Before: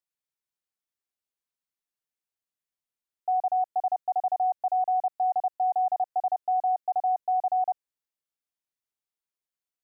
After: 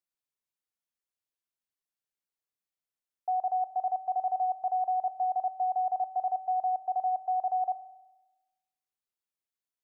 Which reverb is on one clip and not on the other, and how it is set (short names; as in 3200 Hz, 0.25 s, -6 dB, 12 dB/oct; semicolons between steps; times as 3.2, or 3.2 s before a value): spring tank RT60 1.1 s, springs 33 ms, chirp 50 ms, DRR 13.5 dB; gain -3.5 dB